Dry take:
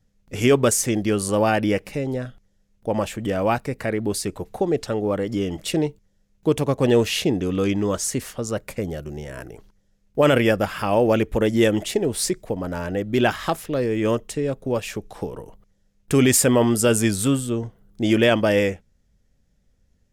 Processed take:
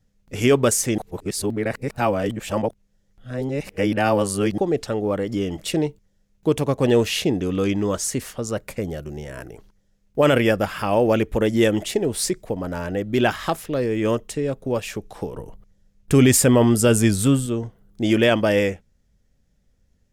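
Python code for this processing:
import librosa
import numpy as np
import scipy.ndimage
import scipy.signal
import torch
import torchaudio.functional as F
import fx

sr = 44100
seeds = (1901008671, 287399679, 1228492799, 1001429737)

y = fx.low_shelf(x, sr, hz=200.0, db=6.5, at=(15.35, 17.46))
y = fx.edit(y, sr, fx.reverse_span(start_s=0.98, length_s=3.6), tone=tone)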